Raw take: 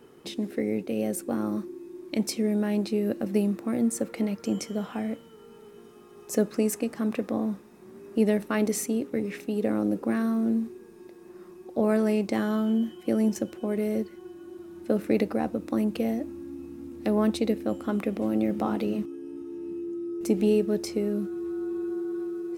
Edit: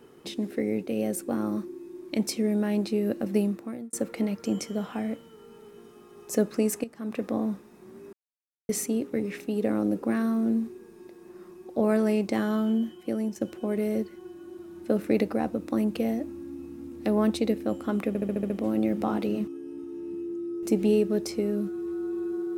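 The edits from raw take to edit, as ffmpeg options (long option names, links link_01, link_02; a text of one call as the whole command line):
ffmpeg -i in.wav -filter_complex "[0:a]asplit=12[link_01][link_02][link_03][link_04][link_05][link_06][link_07][link_08][link_09][link_10][link_11][link_12];[link_01]atrim=end=3.93,asetpts=PTS-STARTPTS,afade=type=out:start_time=3.41:duration=0.52[link_13];[link_02]atrim=start=3.93:end=6.84,asetpts=PTS-STARTPTS,afade=type=in:duration=0.004:curve=hsin,afade=type=out:start_time=2.906:duration=0.004:curve=hsin:silence=0.251189[link_14];[link_03]atrim=start=6.84:end=8.13,asetpts=PTS-STARTPTS,afade=type=in:duration=0.4:curve=qua:silence=0.251189,afade=type=out:start_time=1.286:duration=0.004:curve=hsin[link_15];[link_04]atrim=start=8.13:end=8.69,asetpts=PTS-STARTPTS,volume=0[link_16];[link_05]atrim=start=8.69:end=13.41,asetpts=PTS-STARTPTS,afade=type=in:duration=0.004:curve=hsin,afade=type=out:start_time=3.98:duration=0.74:silence=0.375837[link_17];[link_06]atrim=start=13.41:end=18.152,asetpts=PTS-STARTPTS,afade=type=in:duration=0.004:curve=hsin:silence=0.375837[link_18];[link_07]atrim=start=18.078:end=18.152[link_19];[link_08]atrim=start=18.078:end=18.152[link_20];[link_09]atrim=start=18.078:end=18.152[link_21];[link_10]atrim=start=18.078:end=18.152[link_22];[link_11]atrim=start=18.078:end=18.152[link_23];[link_12]atrim=start=18.078[link_24];[link_13][link_14][link_15][link_16][link_17][link_18]concat=n=6:v=0:a=1[link_25];[link_25][link_19]acrossfade=duration=0.004:curve1=hsin:curve2=hsin[link_26];[link_26][link_20]acrossfade=duration=0.004:curve1=hsin:curve2=hsin[link_27];[link_27][link_21]acrossfade=duration=0.004:curve1=hsin:curve2=hsin[link_28];[link_28][link_22]acrossfade=duration=0.004:curve1=hsin:curve2=hsin[link_29];[link_29][link_23]acrossfade=duration=0.004:curve1=hsin:curve2=hsin[link_30];[link_30][link_24]acrossfade=duration=0.004:curve1=hsin:curve2=hsin" out.wav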